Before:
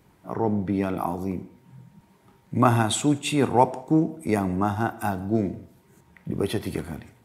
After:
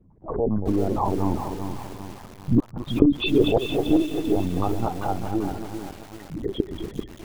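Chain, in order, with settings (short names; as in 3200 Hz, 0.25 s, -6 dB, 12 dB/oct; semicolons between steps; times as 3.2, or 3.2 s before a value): formant sharpening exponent 3; Doppler pass-by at 2.21, 9 m/s, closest 9.6 m; in parallel at -2.5 dB: compressor 10:1, threshold -37 dBFS, peak gain reduction 23 dB; on the sum: flipped gate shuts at -11 dBFS, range -35 dB; on a send: thinning echo 0.231 s, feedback 60%, high-pass 800 Hz, level -4 dB; on the sum: careless resampling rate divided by 3×, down none, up hold; LPC vocoder at 8 kHz pitch kept; lo-fi delay 0.391 s, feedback 55%, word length 7-bit, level -7.5 dB; gain +5 dB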